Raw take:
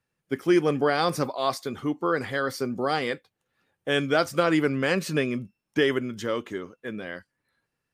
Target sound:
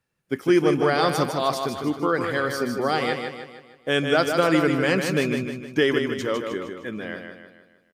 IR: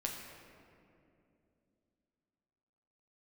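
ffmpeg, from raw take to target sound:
-af "aecho=1:1:154|308|462|616|770|924:0.501|0.236|0.111|0.052|0.0245|0.0115,volume=2dB"

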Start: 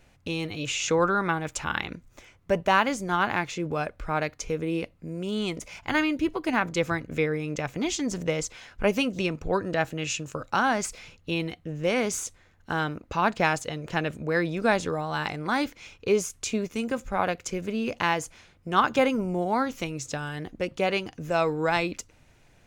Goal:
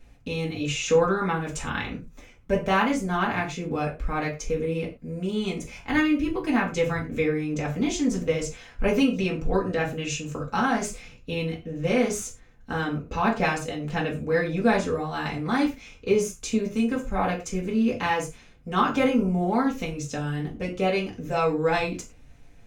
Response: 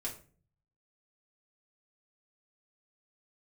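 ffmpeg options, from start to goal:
-filter_complex "[0:a]lowshelf=f=250:g=6[a];[1:a]atrim=start_sample=2205,afade=t=out:st=0.19:d=0.01,atrim=end_sample=8820,asetrate=48510,aresample=44100[b];[a][b]afir=irnorm=-1:irlink=0"

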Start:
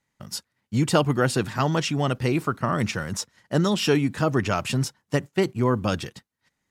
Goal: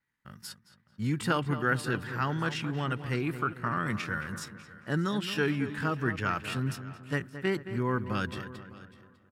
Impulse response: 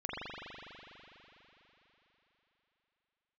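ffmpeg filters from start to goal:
-filter_complex "[0:a]adynamicequalizer=threshold=0.00282:dfrequency=7700:dqfactor=3.3:tfrequency=7700:tqfactor=3.3:attack=5:release=100:ratio=0.375:range=1.5:mode=cutabove:tftype=bell,asplit=2[a][b];[b]aecho=0:1:428|856:0.106|0.0191[c];[a][c]amix=inputs=2:normalize=0,atempo=0.72,equalizer=f=630:t=o:w=0.67:g=-7,equalizer=f=1.6k:t=o:w=0.67:g=9,equalizer=f=6.3k:t=o:w=0.67:g=-7,asplit=2[d][e];[e]adelay=220,lowpass=f=2.4k:p=1,volume=-11dB,asplit=2[f][g];[g]adelay=220,lowpass=f=2.4k:p=1,volume=0.49,asplit=2[h][i];[i]adelay=220,lowpass=f=2.4k:p=1,volume=0.49,asplit=2[j][k];[k]adelay=220,lowpass=f=2.4k:p=1,volume=0.49,asplit=2[l][m];[m]adelay=220,lowpass=f=2.4k:p=1,volume=0.49[n];[f][h][j][l][n]amix=inputs=5:normalize=0[o];[d][o]amix=inputs=2:normalize=0,volume=-8dB"

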